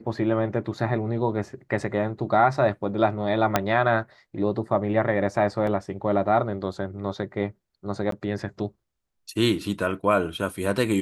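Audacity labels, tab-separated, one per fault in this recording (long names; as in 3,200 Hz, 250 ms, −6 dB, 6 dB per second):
3.560000	3.560000	click −4 dBFS
5.670000	5.670000	drop-out 2.8 ms
8.110000	8.120000	drop-out 13 ms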